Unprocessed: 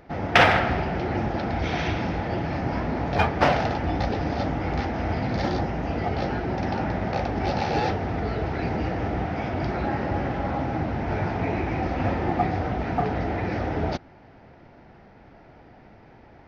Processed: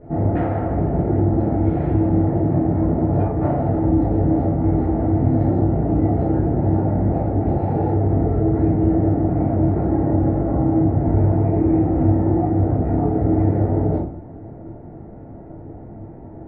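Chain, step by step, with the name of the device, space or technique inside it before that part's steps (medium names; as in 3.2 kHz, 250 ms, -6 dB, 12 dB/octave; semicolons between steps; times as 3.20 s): television next door (compression 5:1, threshold -29 dBFS, peak gain reduction 15.5 dB; low-pass 470 Hz 12 dB/octave; reverberation RT60 0.55 s, pre-delay 10 ms, DRR -10 dB); trim +5 dB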